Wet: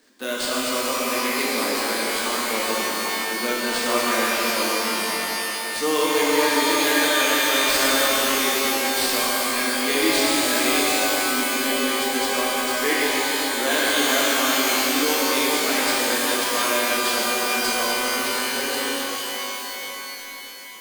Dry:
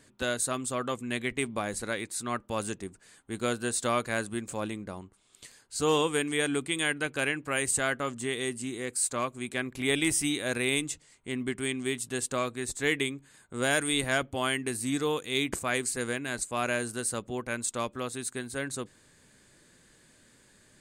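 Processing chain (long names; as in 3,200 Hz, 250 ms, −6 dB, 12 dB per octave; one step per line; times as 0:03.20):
Butterworth high-pass 210 Hz 36 dB per octave
sample-rate reduction 13,000 Hz, jitter 0%
reverb with rising layers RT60 4 s, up +12 semitones, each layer −2 dB, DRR −6 dB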